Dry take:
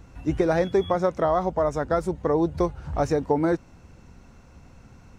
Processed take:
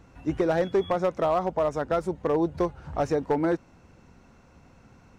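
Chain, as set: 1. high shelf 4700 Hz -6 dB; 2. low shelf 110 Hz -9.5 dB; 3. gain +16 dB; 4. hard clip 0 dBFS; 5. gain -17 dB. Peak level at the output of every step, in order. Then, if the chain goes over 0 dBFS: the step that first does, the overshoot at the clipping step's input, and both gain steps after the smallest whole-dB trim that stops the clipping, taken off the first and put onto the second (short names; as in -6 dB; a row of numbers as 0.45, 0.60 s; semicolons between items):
-9.0, -9.0, +7.0, 0.0, -17.0 dBFS; step 3, 7.0 dB; step 3 +9 dB, step 5 -10 dB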